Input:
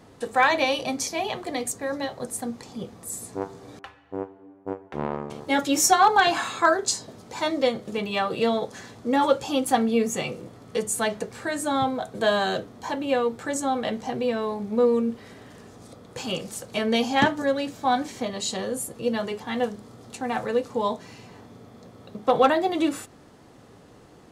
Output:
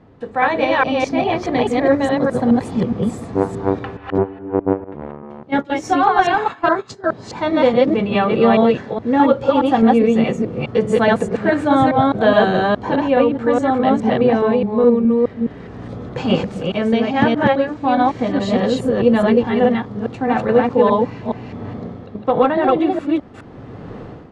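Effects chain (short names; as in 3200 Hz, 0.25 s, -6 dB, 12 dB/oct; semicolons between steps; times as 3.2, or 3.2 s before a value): reverse delay 0.209 s, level 0 dB; 4.84–7.04 gate -21 dBFS, range -17 dB; LPF 2500 Hz 12 dB/oct; low shelf 340 Hz +7 dB; AGC gain up to 15 dB; gain -1 dB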